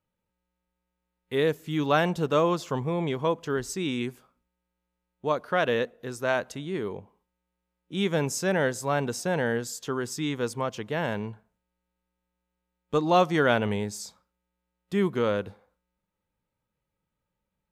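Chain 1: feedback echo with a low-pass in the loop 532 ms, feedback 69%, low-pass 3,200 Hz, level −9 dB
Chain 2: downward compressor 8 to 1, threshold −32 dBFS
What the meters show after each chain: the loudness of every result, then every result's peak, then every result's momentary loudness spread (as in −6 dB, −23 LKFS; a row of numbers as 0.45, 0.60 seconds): −28.0, −37.0 LKFS; −8.5, −20.5 dBFS; 17, 5 LU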